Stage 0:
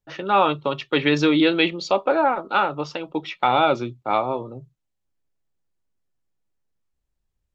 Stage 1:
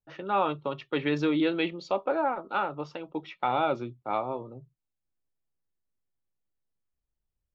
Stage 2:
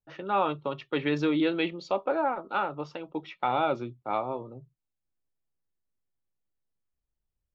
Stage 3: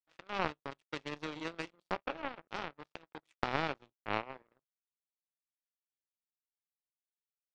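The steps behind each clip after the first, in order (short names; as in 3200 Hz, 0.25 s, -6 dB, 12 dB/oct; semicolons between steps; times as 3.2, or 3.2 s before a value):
high shelf 3200 Hz -10 dB; gain -7.5 dB
nothing audible
per-bin compression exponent 0.6; power-law curve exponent 3; mismatched tape noise reduction encoder only; gain -1.5 dB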